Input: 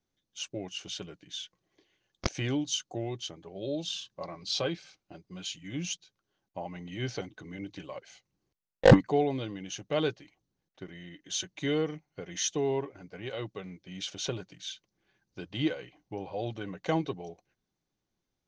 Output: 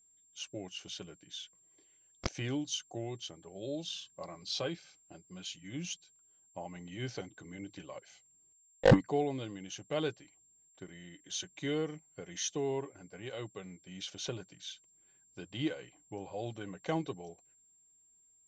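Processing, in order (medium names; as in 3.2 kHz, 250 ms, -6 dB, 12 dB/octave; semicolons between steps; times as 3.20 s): whistle 7.4 kHz -59 dBFS; trim -5 dB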